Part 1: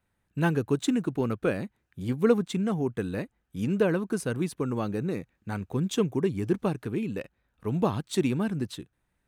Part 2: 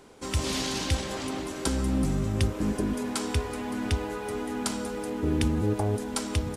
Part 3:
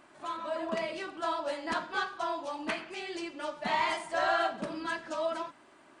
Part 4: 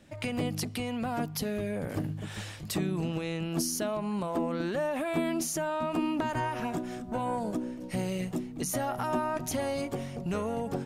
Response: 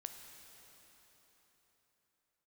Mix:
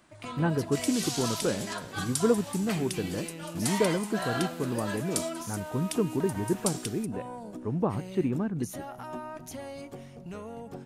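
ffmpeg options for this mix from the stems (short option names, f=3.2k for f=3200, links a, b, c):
-filter_complex "[0:a]lowpass=1.5k,volume=-2dB,asplit=2[a][b];[1:a]aderivative,adelay=500,volume=1dB,asplit=2[c][d];[d]volume=-16.5dB[e];[2:a]highshelf=f=3.4k:g=11,volume=-7dB[f];[3:a]volume=-10dB,asplit=2[g][h];[h]volume=-12dB[i];[b]apad=whole_len=311480[j];[c][j]sidechaingate=range=-9dB:threshold=-45dB:ratio=16:detection=peak[k];[4:a]atrim=start_sample=2205[l];[e][i]amix=inputs=2:normalize=0[m];[m][l]afir=irnorm=-1:irlink=0[n];[a][k][f][g][n]amix=inputs=5:normalize=0"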